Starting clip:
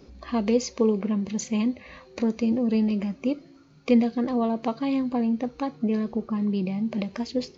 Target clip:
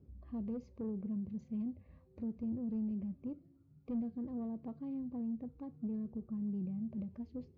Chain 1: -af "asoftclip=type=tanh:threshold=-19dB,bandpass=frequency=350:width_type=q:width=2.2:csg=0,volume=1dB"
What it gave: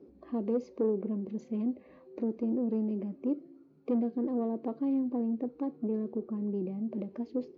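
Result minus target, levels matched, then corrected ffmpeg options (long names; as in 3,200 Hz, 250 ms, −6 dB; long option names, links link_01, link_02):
125 Hz band −5.0 dB
-af "asoftclip=type=tanh:threshold=-19dB,bandpass=frequency=92:width_type=q:width=2.2:csg=0,volume=1dB"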